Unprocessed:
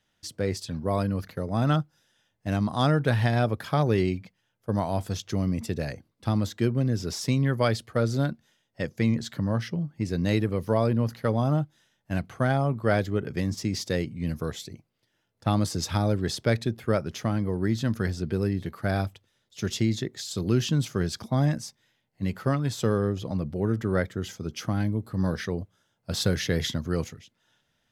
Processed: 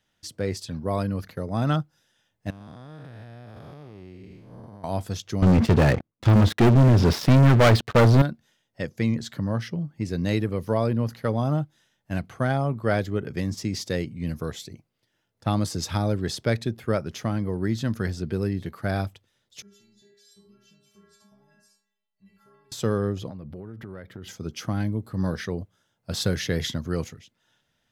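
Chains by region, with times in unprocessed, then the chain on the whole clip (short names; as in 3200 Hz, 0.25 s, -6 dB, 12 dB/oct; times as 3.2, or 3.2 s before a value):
2.5–4.84 time blur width 0.337 s + compressor 10:1, threshold -39 dBFS
5.42–8.22 air absorption 280 m + sample leveller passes 5
19.62–22.72 echo 72 ms -8.5 dB + compressor 3:1, threshold -37 dBFS + metallic resonator 200 Hz, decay 0.84 s, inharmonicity 0.008
23.29–24.28 bell 7000 Hz -13 dB 0.8 oct + compressor 16:1, threshold -34 dBFS
whole clip: dry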